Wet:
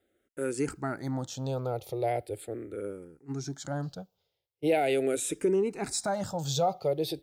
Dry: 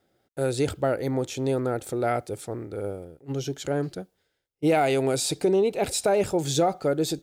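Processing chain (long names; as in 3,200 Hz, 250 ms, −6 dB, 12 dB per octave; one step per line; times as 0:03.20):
frequency shifter mixed with the dry sound −0.4 Hz
level −2.5 dB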